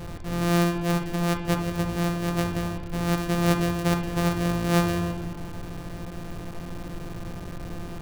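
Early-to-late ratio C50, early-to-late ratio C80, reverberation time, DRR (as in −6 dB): 7.0 dB, 8.5 dB, 1.5 s, 4.5 dB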